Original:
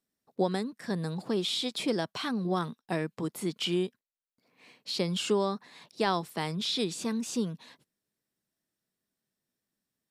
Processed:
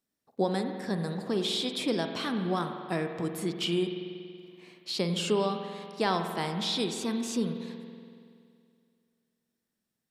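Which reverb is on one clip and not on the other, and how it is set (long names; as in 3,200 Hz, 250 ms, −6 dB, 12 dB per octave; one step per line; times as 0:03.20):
spring reverb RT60 2.3 s, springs 47 ms, chirp 45 ms, DRR 5.5 dB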